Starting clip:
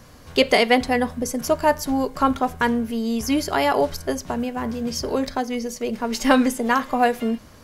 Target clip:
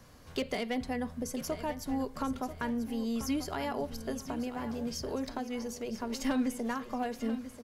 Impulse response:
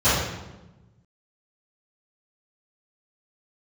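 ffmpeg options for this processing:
-filter_complex "[0:a]asoftclip=type=hard:threshold=-10dB,acrossover=split=270[link_01][link_02];[link_02]acompressor=threshold=-28dB:ratio=2.5[link_03];[link_01][link_03]amix=inputs=2:normalize=0,aecho=1:1:989|1978|2967:0.251|0.0703|0.0197,volume=-9dB"

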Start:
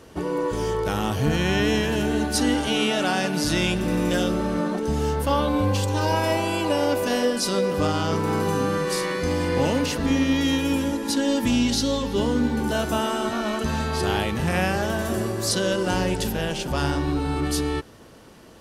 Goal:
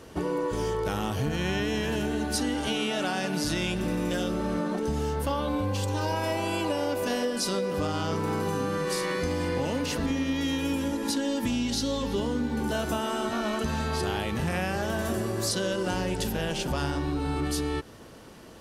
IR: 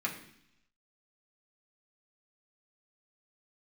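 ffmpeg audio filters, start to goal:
-af "acompressor=threshold=-25dB:ratio=6"

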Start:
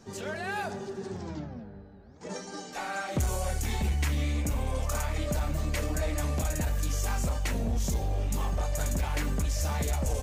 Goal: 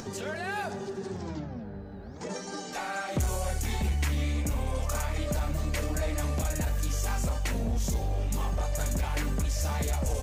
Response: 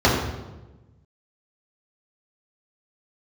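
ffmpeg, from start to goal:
-af "acompressor=mode=upward:threshold=-31dB:ratio=2.5"

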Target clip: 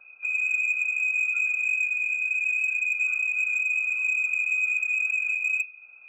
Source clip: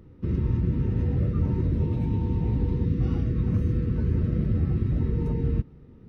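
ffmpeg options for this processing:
ffmpeg -i in.wav -filter_complex "[0:a]afftfilt=real='re*(1-between(b*sr/4096,190,970))':imag='im*(1-between(b*sr/4096,190,970))':win_size=4096:overlap=0.75,lowpass=frequency=2200:width_type=q:width=0.5098,lowpass=frequency=2200:width_type=q:width=0.6013,lowpass=frequency=2200:width_type=q:width=0.9,lowpass=frequency=2200:width_type=q:width=2.563,afreqshift=-2600,adynamicequalizer=threshold=0.00316:dfrequency=650:dqfactor=2.5:tfrequency=650:tqfactor=2.5:attack=5:release=100:ratio=0.375:range=1.5:mode=cutabove:tftype=bell,acrossover=split=1400[link_01][link_02];[link_01]acompressor=threshold=-57dB:ratio=6[link_03];[link_02]flanger=delay=1.6:depth=1.8:regen=-85:speed=0.7:shape=triangular[link_04];[link_03][link_04]amix=inputs=2:normalize=0,asoftclip=type=tanh:threshold=-22.5dB,bandreject=frequency=131.5:width_type=h:width=4,bandreject=frequency=263:width_type=h:width=4,bandreject=frequency=394.5:width_type=h:width=4,bandreject=frequency=526:width_type=h:width=4,bandreject=frequency=657.5:width_type=h:width=4,bandreject=frequency=789:width_type=h:width=4,bandreject=frequency=920.5:width_type=h:width=4,bandreject=frequency=1052:width_type=h:width=4,bandreject=frequency=1183.5:width_type=h:width=4,bandreject=frequency=1315:width_type=h:width=4,bandreject=frequency=1446.5:width_type=h:width=4,bandreject=frequency=1578:width_type=h:width=4,bandreject=frequency=1709.5:width_type=h:width=4,bandreject=frequency=1841:width_type=h:width=4,bandreject=frequency=1972.5:width_type=h:width=4,bandreject=frequency=2104:width_type=h:width=4,bandreject=frequency=2235.5:width_type=h:width=4,bandreject=frequency=2367:width_type=h:width=4,bandreject=frequency=2498.5:width_type=h:width=4,bandreject=frequency=2630:width_type=h:width=4,bandreject=frequency=2761.5:width_type=h:width=4,bandreject=frequency=2893:width_type=h:width=4,bandreject=frequency=3024.5:width_type=h:width=4,bandreject=frequency=3156:width_type=h:width=4,bandreject=frequency=3287.5:width_type=h:width=4,bandreject=frequency=3419:width_type=h:width=4,bandreject=frequency=3550.5:width_type=h:width=4,bandreject=frequency=3682:width_type=h:width=4,bandreject=frequency=3813.5:width_type=h:width=4,bandreject=frequency=3945:width_type=h:width=4,bandreject=frequency=4076.5:width_type=h:width=4,bandreject=frequency=4208:width_type=h:width=4,bandreject=frequency=4339.5:width_type=h:width=4,bandreject=frequency=4471:width_type=h:width=4,bandreject=frequency=4602.5:width_type=h:width=4,bandreject=frequency=4734:width_type=h:width=4,bandreject=frequency=4865.5:width_type=h:width=4,bandreject=frequency=4997:width_type=h:width=4,bandreject=frequency=5128.5:width_type=h:width=4,volume=5dB" out.wav

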